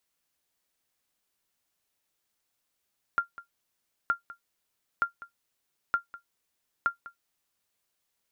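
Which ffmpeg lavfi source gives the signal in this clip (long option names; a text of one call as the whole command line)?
ffmpeg -f lavfi -i "aevalsrc='0.158*(sin(2*PI*1390*mod(t,0.92))*exp(-6.91*mod(t,0.92)/0.12)+0.126*sin(2*PI*1390*max(mod(t,0.92)-0.2,0))*exp(-6.91*max(mod(t,0.92)-0.2,0)/0.12))':duration=4.6:sample_rate=44100" out.wav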